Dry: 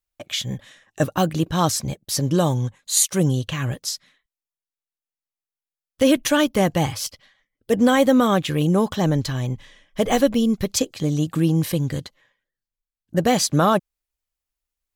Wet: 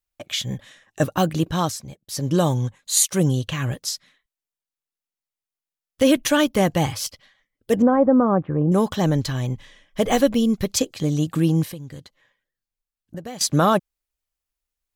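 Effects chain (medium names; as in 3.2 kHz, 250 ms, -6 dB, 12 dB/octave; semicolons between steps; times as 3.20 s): 1.51–2.35 s: dip -11 dB, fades 0.29 s; 7.82–8.72 s: low-pass 1.2 kHz 24 dB/octave; 11.63–13.41 s: compression 3:1, threshold -37 dBFS, peak gain reduction 17.5 dB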